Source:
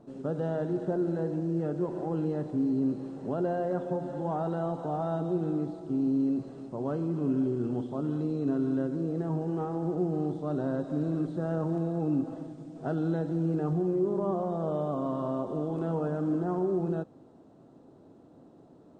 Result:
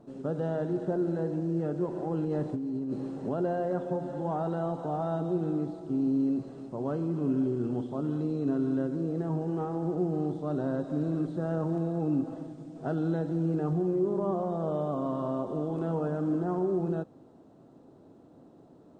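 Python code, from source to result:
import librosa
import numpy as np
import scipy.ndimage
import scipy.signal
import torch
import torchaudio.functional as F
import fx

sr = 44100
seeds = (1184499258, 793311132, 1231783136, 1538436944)

y = fx.over_compress(x, sr, threshold_db=-31.0, ratio=-1.0, at=(2.25, 3.29))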